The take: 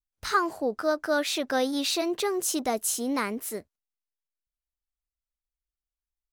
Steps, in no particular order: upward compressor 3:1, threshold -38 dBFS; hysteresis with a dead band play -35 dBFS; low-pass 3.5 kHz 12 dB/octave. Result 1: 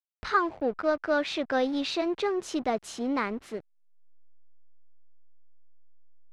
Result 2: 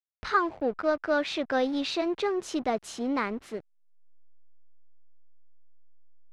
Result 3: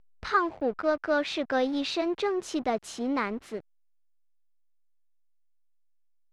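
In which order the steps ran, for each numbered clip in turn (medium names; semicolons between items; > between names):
hysteresis with a dead band > low-pass > upward compressor; hysteresis with a dead band > upward compressor > low-pass; upward compressor > hysteresis with a dead band > low-pass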